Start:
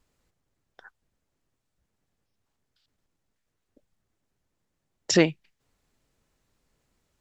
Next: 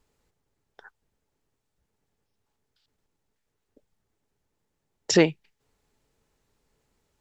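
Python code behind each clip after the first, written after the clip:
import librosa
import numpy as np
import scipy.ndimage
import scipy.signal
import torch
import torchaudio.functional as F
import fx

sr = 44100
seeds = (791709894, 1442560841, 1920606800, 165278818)

y = fx.small_body(x, sr, hz=(430.0, 860.0), ring_ms=45, db=7)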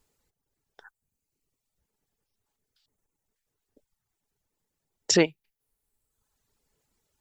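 y = fx.dereverb_blind(x, sr, rt60_s=1.1)
y = fx.high_shelf(y, sr, hz=5700.0, db=10.0)
y = y * 10.0 ** (-2.5 / 20.0)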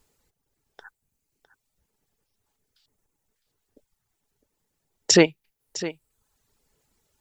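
y = x + 10.0 ** (-15.0 / 20.0) * np.pad(x, (int(657 * sr / 1000.0), 0))[:len(x)]
y = y * 10.0 ** (5.0 / 20.0)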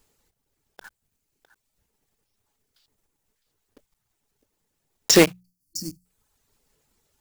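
y = fx.block_float(x, sr, bits=3)
y = fx.spec_box(y, sr, start_s=5.41, length_s=0.64, low_hz=340.0, high_hz=4300.0, gain_db=-27)
y = fx.hum_notches(y, sr, base_hz=60, count=3)
y = y * 10.0 ** (1.0 / 20.0)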